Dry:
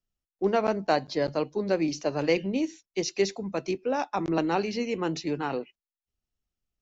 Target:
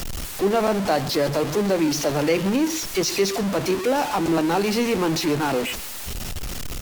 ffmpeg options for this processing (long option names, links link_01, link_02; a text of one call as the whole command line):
ffmpeg -i in.wav -filter_complex "[0:a]aeval=exprs='val(0)+0.5*0.0562*sgn(val(0))':channel_layout=same,asplit=2[link_01][link_02];[link_02]alimiter=limit=-18dB:level=0:latency=1:release=122,volume=-1dB[link_03];[link_01][link_03]amix=inputs=2:normalize=0,aecho=1:1:131:0.119,volume=-2dB" -ar 48000 -c:a libvorbis -b:a 96k out.ogg